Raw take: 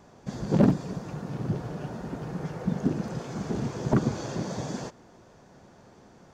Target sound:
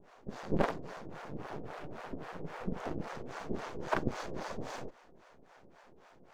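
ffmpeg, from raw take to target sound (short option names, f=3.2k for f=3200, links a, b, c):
-filter_complex "[0:a]bass=f=250:g=-14,treble=f=4k:g=-11,aeval=exprs='max(val(0),0)':c=same,acrossover=split=520[a][b];[a]aeval=exprs='val(0)*(1-1/2+1/2*cos(2*PI*3.7*n/s))':c=same[c];[b]aeval=exprs='val(0)*(1-1/2-1/2*cos(2*PI*3.7*n/s))':c=same[d];[c][d]amix=inputs=2:normalize=0,volume=6dB"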